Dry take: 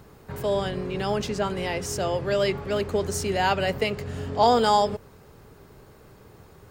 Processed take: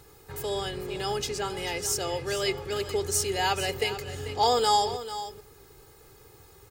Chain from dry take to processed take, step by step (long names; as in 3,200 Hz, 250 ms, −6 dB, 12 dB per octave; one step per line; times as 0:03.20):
parametric band 12,000 Hz +12.5 dB 2.6 octaves
comb filter 2.4 ms, depth 63%
single-tap delay 442 ms −12.5 dB
level −7 dB